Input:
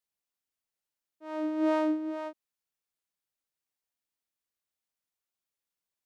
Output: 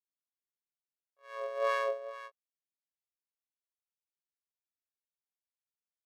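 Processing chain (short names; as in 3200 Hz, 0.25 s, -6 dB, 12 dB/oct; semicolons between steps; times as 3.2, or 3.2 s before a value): AM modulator 68 Hz, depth 55%; pitch shift +10 st; upward expander 1.5:1, over -52 dBFS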